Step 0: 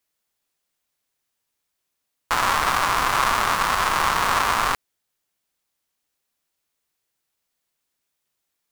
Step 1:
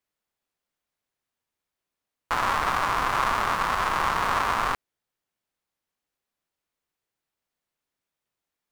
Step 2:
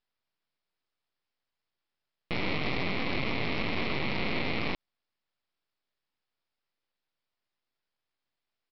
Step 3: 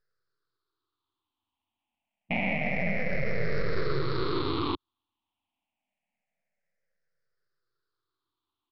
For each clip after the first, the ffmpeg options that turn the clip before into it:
-af "highshelf=f=3300:g=-9.5,volume=0.75"
-af "alimiter=limit=0.0841:level=0:latency=1:release=61,aresample=11025,aeval=exprs='abs(val(0))':c=same,aresample=44100,volume=1.41"
-af "afftfilt=real='re*pow(10,22/40*sin(2*PI*(0.57*log(max(b,1)*sr/1024/100)/log(2)-(-0.27)*(pts-256)/sr)))':imag='im*pow(10,22/40*sin(2*PI*(0.57*log(max(b,1)*sr/1024/100)/log(2)-(-0.27)*(pts-256)/sr)))':win_size=1024:overlap=0.75,aemphasis=mode=reproduction:type=75fm,alimiter=limit=0.178:level=0:latency=1:release=310,volume=0.891"

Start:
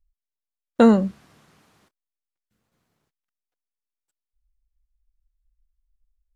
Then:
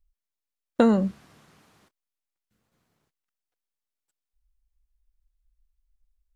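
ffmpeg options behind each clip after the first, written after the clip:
-af "acompressor=threshold=0.178:ratio=6"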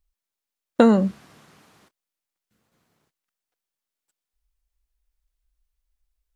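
-af "lowshelf=f=61:g=-11.5,volume=1.68"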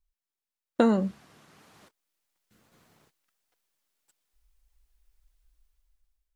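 -af "dynaudnorm=f=250:g=7:m=4.73,flanger=delay=0.9:depth=2.7:regen=78:speed=1.7:shape=triangular,volume=0.794"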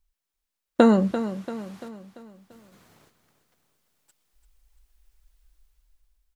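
-af "aecho=1:1:341|682|1023|1364|1705:0.266|0.128|0.0613|0.0294|0.0141,volume=1.88"

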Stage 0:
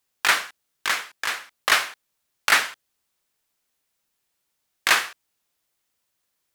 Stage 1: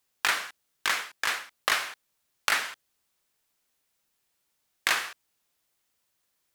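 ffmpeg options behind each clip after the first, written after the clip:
-af "acompressor=threshold=0.0794:ratio=5"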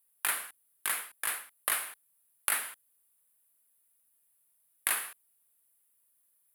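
-af "highshelf=f=8000:t=q:w=3:g=12,volume=0.398"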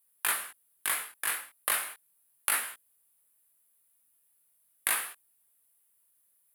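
-af "flanger=delay=16.5:depth=6.8:speed=0.37,volume=1.78"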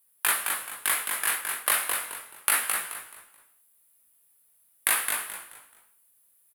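-filter_complex "[0:a]asplit=5[s0][s1][s2][s3][s4];[s1]adelay=215,afreqshift=-74,volume=0.562[s5];[s2]adelay=430,afreqshift=-148,volume=0.168[s6];[s3]adelay=645,afreqshift=-222,volume=0.0507[s7];[s4]adelay=860,afreqshift=-296,volume=0.0151[s8];[s0][s5][s6][s7][s8]amix=inputs=5:normalize=0,volume=1.68"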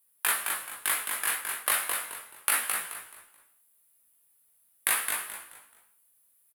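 -filter_complex "[0:a]asplit=2[s0][s1];[s1]adelay=13,volume=0.251[s2];[s0][s2]amix=inputs=2:normalize=0,volume=0.75"

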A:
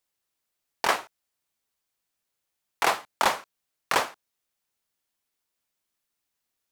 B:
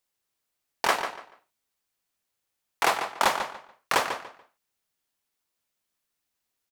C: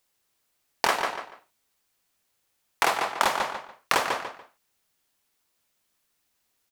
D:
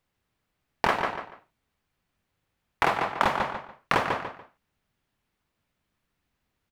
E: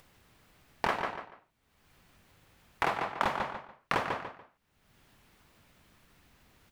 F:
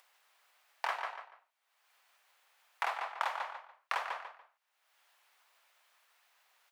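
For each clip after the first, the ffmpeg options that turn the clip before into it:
-filter_complex "[0:a]asplit=2[s0][s1];[s1]adelay=144,lowpass=f=4600:p=1,volume=0.398,asplit=2[s2][s3];[s3]adelay=144,lowpass=f=4600:p=1,volume=0.25,asplit=2[s4][s5];[s5]adelay=144,lowpass=f=4600:p=1,volume=0.25[s6];[s0][s2][s4][s6]amix=inputs=4:normalize=0"
-af "acompressor=threshold=0.0398:ratio=4,volume=2.37"
-af "bass=f=250:g=12,treble=f=4000:g=-14"
-af "acompressor=mode=upward:threshold=0.0126:ratio=2.5,volume=0.501"
-af "highpass=f=680:w=0.5412,highpass=f=680:w=1.3066,volume=0.631"

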